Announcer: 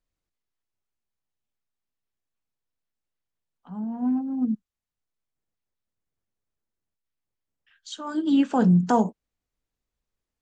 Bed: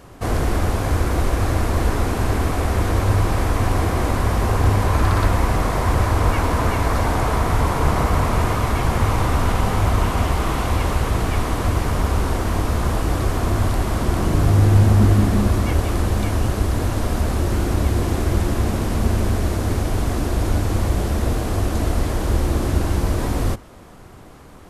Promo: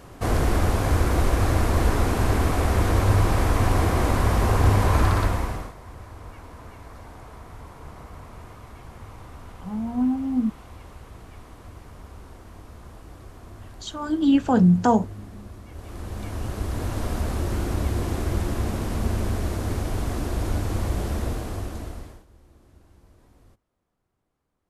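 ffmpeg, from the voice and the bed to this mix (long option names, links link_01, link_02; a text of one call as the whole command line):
ffmpeg -i stem1.wav -i stem2.wav -filter_complex "[0:a]adelay=5950,volume=2dB[link_01];[1:a]volume=16dB,afade=type=out:start_time=4.99:duration=0.75:silence=0.0794328,afade=type=in:start_time=15.7:duration=1.33:silence=0.133352,afade=type=out:start_time=21.14:duration=1.11:silence=0.0354813[link_02];[link_01][link_02]amix=inputs=2:normalize=0" out.wav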